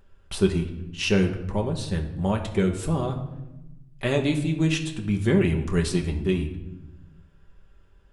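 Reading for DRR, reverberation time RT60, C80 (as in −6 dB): 2.0 dB, 0.95 s, 12.0 dB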